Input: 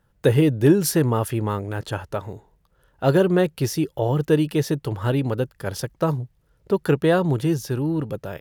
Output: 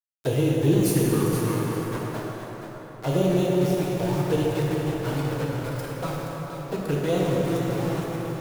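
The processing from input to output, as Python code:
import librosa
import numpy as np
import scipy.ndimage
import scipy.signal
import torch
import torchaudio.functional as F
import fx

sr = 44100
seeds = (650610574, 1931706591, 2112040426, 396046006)

y = fx.high_shelf(x, sr, hz=9600.0, db=7.0)
y = np.where(np.abs(y) >= 10.0 ** (-22.5 / 20.0), y, 0.0)
y = fx.env_flanger(y, sr, rest_ms=10.4, full_db=-14.0)
y = y + 10.0 ** (-8.5 / 20.0) * np.pad(y, (int(474 * sr / 1000.0), 0))[:len(y)]
y = fx.rev_plate(y, sr, seeds[0], rt60_s=4.4, hf_ratio=0.55, predelay_ms=0, drr_db=-4.5)
y = F.gain(torch.from_numpy(y), -7.5).numpy()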